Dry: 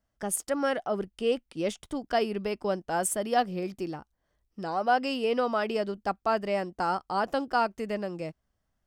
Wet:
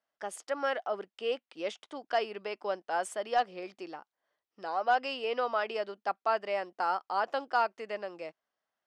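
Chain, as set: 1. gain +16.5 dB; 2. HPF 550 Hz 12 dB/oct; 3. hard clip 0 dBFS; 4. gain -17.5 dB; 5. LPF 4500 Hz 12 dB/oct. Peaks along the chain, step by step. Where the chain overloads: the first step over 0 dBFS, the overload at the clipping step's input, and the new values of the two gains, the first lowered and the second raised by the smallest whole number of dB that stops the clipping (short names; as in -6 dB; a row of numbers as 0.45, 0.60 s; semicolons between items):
+3.5, +5.0, 0.0, -17.5, -17.0 dBFS; step 1, 5.0 dB; step 1 +11.5 dB, step 4 -12.5 dB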